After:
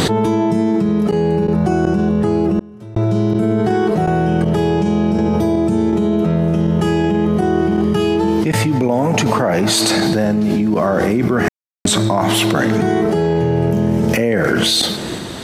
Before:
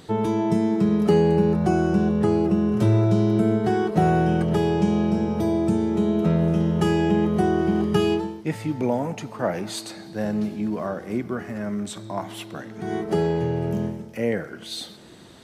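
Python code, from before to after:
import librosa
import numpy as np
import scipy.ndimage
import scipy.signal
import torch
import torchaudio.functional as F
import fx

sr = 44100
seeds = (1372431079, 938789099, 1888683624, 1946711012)

y = fx.tremolo_random(x, sr, seeds[0], hz=2.7, depth_pct=100)
y = fx.env_flatten(y, sr, amount_pct=100)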